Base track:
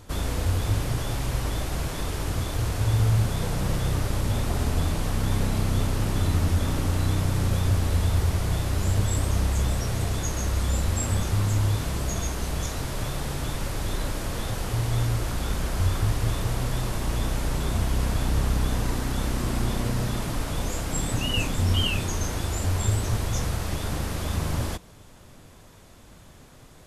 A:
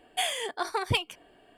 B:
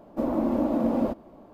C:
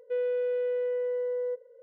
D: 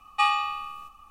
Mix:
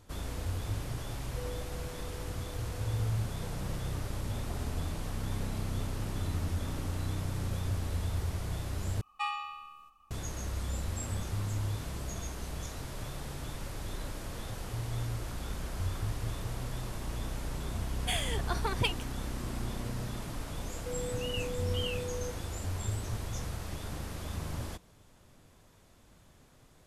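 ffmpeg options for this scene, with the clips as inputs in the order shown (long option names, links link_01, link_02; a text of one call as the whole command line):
ffmpeg -i bed.wav -i cue0.wav -i cue1.wav -i cue2.wav -i cue3.wav -filter_complex "[3:a]asplit=2[link_01][link_02];[0:a]volume=-10.5dB[link_03];[link_01]aecho=1:1:244:0.501[link_04];[1:a]bandreject=frequency=760:width=12[link_05];[link_02]acompressor=threshold=-35dB:ratio=6:attack=3.2:release=140:knee=1:detection=peak[link_06];[link_03]asplit=2[link_07][link_08];[link_07]atrim=end=9.014[link_09];[4:a]atrim=end=1.1,asetpts=PTS-STARTPTS,volume=-12dB[link_10];[link_08]atrim=start=10.106[link_11];[link_04]atrim=end=1.82,asetpts=PTS-STARTPTS,volume=-15dB,afade=type=in:duration=0.004:curve=hsin,afade=type=out:start_time=1.816:duration=0.004:curve=hsin,adelay=1260[link_12];[link_05]atrim=end=1.57,asetpts=PTS-STARTPTS,volume=-4dB,afade=type=in:duration=0.004:curve=hsin,afade=type=out:start_time=1.566:duration=0.004:curve=hsin,adelay=17900[link_13];[link_06]atrim=end=1.82,asetpts=PTS-STARTPTS,volume=-2.5dB,afade=type=in:duration=0.004:curve=hsin,afade=type=out:start_time=1.816:duration=0.004:curve=hsin,adelay=20760[link_14];[link_09][link_10]acrossfade=duration=0.004:curve1=hsin:curve2=hsin[link_15];[link_15][link_11]acrossfade=duration=0.004:curve1=hsin:curve2=hsin[link_16];[link_16][link_12][link_13][link_14]amix=inputs=4:normalize=0" out.wav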